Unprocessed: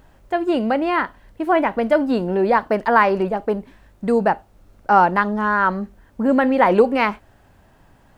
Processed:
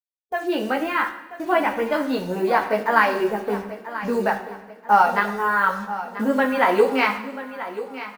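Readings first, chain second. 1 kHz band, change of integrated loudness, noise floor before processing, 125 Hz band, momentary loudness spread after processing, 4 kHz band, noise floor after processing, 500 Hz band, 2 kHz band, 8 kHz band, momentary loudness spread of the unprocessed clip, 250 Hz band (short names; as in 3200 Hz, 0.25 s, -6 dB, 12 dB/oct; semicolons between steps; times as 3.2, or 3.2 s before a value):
-2.0 dB, -3.0 dB, -54 dBFS, -7.0 dB, 13 LU, +2.0 dB, -46 dBFS, -3.5 dB, +0.5 dB, n/a, 12 LU, -5.0 dB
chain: low-pass opened by the level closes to 490 Hz, open at -10.5 dBFS; chorus voices 2, 0.64 Hz, delay 15 ms, depth 1.7 ms; tilt +2.5 dB/oct; in parallel at -1 dB: compressor 8:1, threshold -30 dBFS, peak gain reduction 19 dB; on the sum: bit-crush 7-bit; spectral noise reduction 10 dB; on a send: feedback echo 0.986 s, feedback 37%, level -13.5 dB; on the sum: two-slope reverb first 0.83 s, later 2.6 s, DRR 7 dB; gain -1 dB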